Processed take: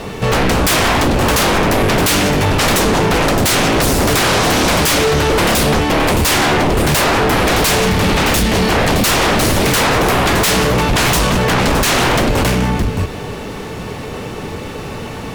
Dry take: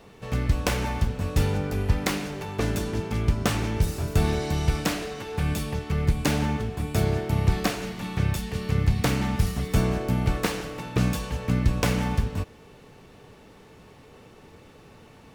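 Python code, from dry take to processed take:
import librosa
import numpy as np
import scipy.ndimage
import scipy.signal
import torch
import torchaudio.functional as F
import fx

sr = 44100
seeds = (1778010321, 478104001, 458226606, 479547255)

y = x + 10.0 ** (-11.0 / 20.0) * np.pad(x, (int(618 * sr / 1000.0), 0))[:len(x)]
y = fx.fold_sine(y, sr, drive_db=20, ceiling_db=-10.0)
y = fx.doppler_dist(y, sr, depth_ms=0.21, at=(11.54, 11.95))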